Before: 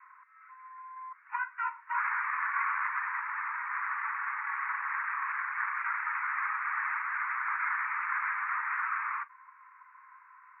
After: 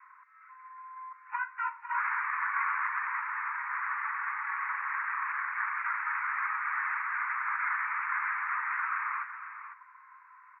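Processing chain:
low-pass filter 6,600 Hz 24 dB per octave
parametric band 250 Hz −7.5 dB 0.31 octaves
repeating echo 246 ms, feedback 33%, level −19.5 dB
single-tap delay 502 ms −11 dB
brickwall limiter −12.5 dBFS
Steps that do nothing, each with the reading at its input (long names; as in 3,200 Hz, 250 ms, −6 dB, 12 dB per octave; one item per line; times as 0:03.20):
low-pass filter 6,600 Hz: nothing at its input above 2,700 Hz
parametric band 250 Hz: nothing at its input below 760 Hz
brickwall limiter −12.5 dBFS: peak of its input −18.0 dBFS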